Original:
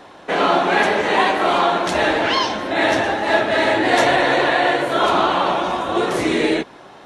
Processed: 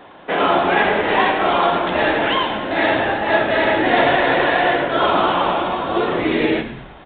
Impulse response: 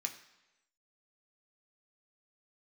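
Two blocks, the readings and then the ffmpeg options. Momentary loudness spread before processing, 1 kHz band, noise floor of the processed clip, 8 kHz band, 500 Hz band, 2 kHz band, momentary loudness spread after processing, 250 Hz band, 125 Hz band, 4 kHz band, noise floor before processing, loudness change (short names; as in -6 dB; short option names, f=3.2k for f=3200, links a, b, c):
5 LU, +0.5 dB, -41 dBFS, under -40 dB, +0.5 dB, +0.5 dB, 5 LU, +0.5 dB, +1.5 dB, -1.0 dB, -42 dBFS, 0.0 dB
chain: -filter_complex "[0:a]asplit=6[a][b][c][d][e][f];[b]adelay=109,afreqshift=-94,volume=-13dB[g];[c]adelay=218,afreqshift=-188,volume=-18.8dB[h];[d]adelay=327,afreqshift=-282,volume=-24.7dB[i];[e]adelay=436,afreqshift=-376,volume=-30.5dB[j];[f]adelay=545,afreqshift=-470,volume=-36.4dB[k];[a][g][h][i][j][k]amix=inputs=6:normalize=0,asplit=2[l][m];[1:a]atrim=start_sample=2205,adelay=68[n];[m][n]afir=irnorm=-1:irlink=0,volume=-14.5dB[o];[l][o]amix=inputs=2:normalize=0,aresample=8000,aresample=44100"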